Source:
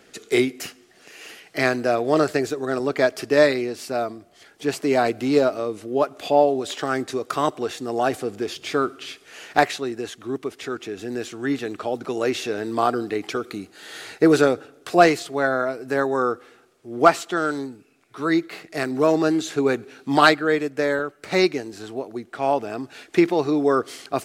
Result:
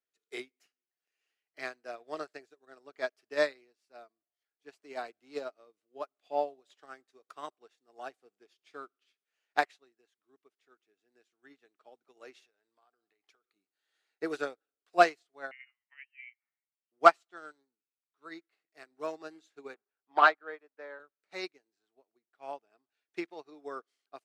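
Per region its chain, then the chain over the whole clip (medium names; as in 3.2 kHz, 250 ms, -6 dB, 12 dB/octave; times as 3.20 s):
12.45–13.56 s: compression 12:1, threshold -25 dBFS + peaking EQ 250 Hz -7.5 dB 1.5 oct
15.51–16.92 s: high-pass 960 Hz 24 dB/octave + frequency inversion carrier 3.5 kHz
19.74–21.00 s: waveshaping leveller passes 1 + band-pass filter 900 Hz, Q 0.76 + distance through air 53 m
whole clip: frequency weighting A; upward expansion 2.5:1, over -37 dBFS; trim -2.5 dB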